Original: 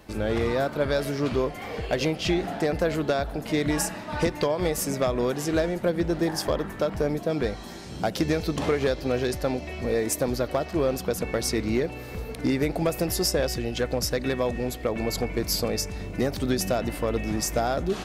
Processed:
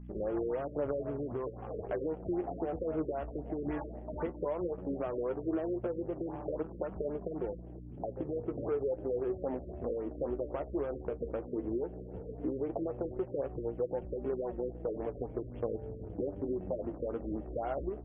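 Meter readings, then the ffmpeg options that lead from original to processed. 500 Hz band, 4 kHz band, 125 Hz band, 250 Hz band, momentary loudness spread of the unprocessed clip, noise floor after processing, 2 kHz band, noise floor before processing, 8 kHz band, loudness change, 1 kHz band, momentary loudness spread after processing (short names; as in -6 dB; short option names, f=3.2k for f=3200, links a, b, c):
-8.5 dB, under -35 dB, -13.0 dB, -10.0 dB, 4 LU, -46 dBFS, -22.0 dB, -38 dBFS, under -40 dB, -10.5 dB, -11.5 dB, 5 LU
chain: -af "aresample=16000,aeval=exprs='sgn(val(0))*max(abs(val(0))-0.00158,0)':c=same,aresample=44100,lowshelf=f=270:t=q:w=1.5:g=-7,alimiter=limit=-18.5dB:level=0:latency=1:release=11,afwtdn=0.0224,adynamicsmooth=sensitivity=2:basefreq=800,aeval=exprs='val(0)+0.01*(sin(2*PI*60*n/s)+sin(2*PI*2*60*n/s)/2+sin(2*PI*3*60*n/s)/3+sin(2*PI*4*60*n/s)/4+sin(2*PI*5*60*n/s)/5)':c=same,acompressor=threshold=-27dB:ratio=6,acrusher=bits=8:mode=log:mix=0:aa=0.000001,flanger=delay=4.8:depth=9.6:regen=42:speed=0.14:shape=triangular,afftfilt=real='re*lt(b*sr/1024,570*pow(3500/570,0.5+0.5*sin(2*PI*3.8*pts/sr)))':imag='im*lt(b*sr/1024,570*pow(3500/570,0.5+0.5*sin(2*PI*3.8*pts/sr)))':win_size=1024:overlap=0.75"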